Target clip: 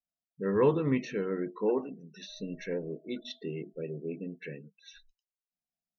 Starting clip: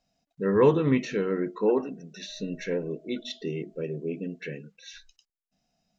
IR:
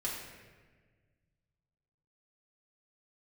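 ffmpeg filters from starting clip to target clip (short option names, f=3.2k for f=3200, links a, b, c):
-af "afftdn=nr=22:nf=-45,volume=-5dB"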